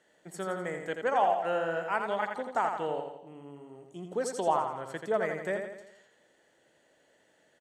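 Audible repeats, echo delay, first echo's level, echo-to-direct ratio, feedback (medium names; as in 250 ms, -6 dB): 5, 84 ms, -6.0 dB, -4.5 dB, 51%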